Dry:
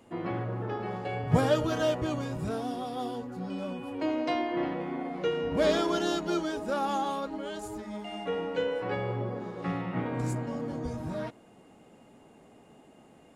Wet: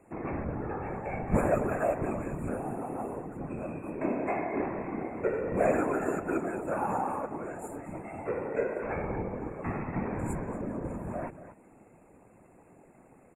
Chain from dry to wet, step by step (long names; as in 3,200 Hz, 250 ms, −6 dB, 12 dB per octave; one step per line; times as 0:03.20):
slap from a distant wall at 40 metres, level −12 dB
random phases in short frames
brick-wall band-stop 2,700–6,900 Hz
level −1.5 dB